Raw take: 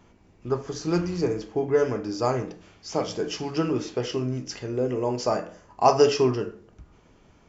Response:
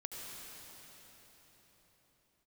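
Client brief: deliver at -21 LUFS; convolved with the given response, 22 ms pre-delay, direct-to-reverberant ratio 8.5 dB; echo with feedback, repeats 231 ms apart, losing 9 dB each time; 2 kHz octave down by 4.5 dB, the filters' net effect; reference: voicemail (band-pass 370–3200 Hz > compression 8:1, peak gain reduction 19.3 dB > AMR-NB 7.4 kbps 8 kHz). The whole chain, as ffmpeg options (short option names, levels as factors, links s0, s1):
-filter_complex "[0:a]equalizer=f=2000:t=o:g=-5.5,aecho=1:1:231|462|693|924:0.355|0.124|0.0435|0.0152,asplit=2[s0][s1];[1:a]atrim=start_sample=2205,adelay=22[s2];[s1][s2]afir=irnorm=-1:irlink=0,volume=0.422[s3];[s0][s3]amix=inputs=2:normalize=0,highpass=370,lowpass=3200,acompressor=threshold=0.0224:ratio=8,volume=7.5" -ar 8000 -c:a libopencore_amrnb -b:a 7400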